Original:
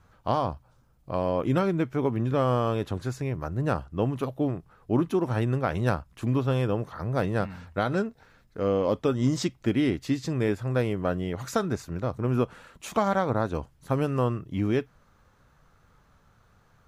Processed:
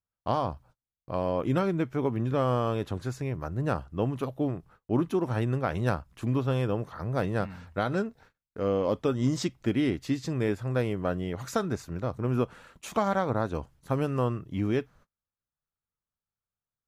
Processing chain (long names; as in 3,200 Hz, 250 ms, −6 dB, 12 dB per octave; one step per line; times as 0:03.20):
noise gate −52 dBFS, range −35 dB
level −2 dB